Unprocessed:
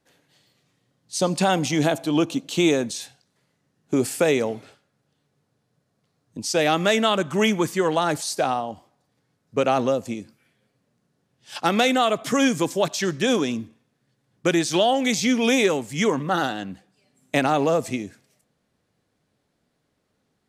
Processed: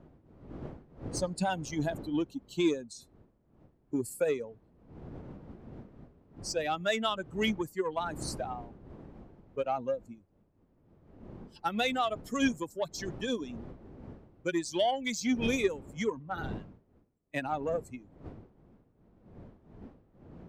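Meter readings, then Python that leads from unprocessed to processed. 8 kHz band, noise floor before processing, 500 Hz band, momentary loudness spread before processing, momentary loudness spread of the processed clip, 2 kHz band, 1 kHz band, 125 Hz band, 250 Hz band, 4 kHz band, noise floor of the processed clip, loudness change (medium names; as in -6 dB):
-12.5 dB, -73 dBFS, -11.0 dB, 12 LU, 20 LU, -11.0 dB, -10.5 dB, -10.5 dB, -10.5 dB, -11.5 dB, -68 dBFS, -11.0 dB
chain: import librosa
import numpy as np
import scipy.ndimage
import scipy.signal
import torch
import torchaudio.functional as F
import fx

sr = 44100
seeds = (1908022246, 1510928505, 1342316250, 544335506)

y = fx.bin_expand(x, sr, power=2.0)
y = fx.dmg_wind(y, sr, seeds[0], corner_hz=290.0, level_db=-41.0)
y = fx.cheby_harmonics(y, sr, harmonics=(7,), levels_db=(-31,), full_scale_db=-10.0)
y = y * librosa.db_to_amplitude(-5.5)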